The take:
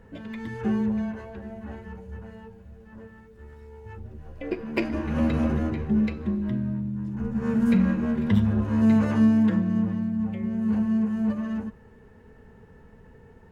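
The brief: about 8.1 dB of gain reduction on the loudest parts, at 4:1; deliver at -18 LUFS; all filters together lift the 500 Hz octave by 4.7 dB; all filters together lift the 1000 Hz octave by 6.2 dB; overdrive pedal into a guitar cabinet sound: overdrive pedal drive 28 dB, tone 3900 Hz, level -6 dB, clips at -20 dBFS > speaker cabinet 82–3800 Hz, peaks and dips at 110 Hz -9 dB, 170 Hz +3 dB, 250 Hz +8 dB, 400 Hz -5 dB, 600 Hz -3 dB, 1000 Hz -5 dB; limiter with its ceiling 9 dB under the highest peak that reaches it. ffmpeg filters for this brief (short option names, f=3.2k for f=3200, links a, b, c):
-filter_complex "[0:a]equalizer=f=500:t=o:g=7,equalizer=f=1k:t=o:g=9,acompressor=threshold=-23dB:ratio=4,alimiter=limit=-20dB:level=0:latency=1,asplit=2[a][b];[b]highpass=f=720:p=1,volume=28dB,asoftclip=type=tanh:threshold=-20dB[c];[a][c]amix=inputs=2:normalize=0,lowpass=f=3.9k:p=1,volume=-6dB,highpass=82,equalizer=f=110:t=q:w=4:g=-9,equalizer=f=170:t=q:w=4:g=3,equalizer=f=250:t=q:w=4:g=8,equalizer=f=400:t=q:w=4:g=-5,equalizer=f=600:t=q:w=4:g=-3,equalizer=f=1k:t=q:w=4:g=-5,lowpass=f=3.8k:w=0.5412,lowpass=f=3.8k:w=1.3066,volume=7.5dB"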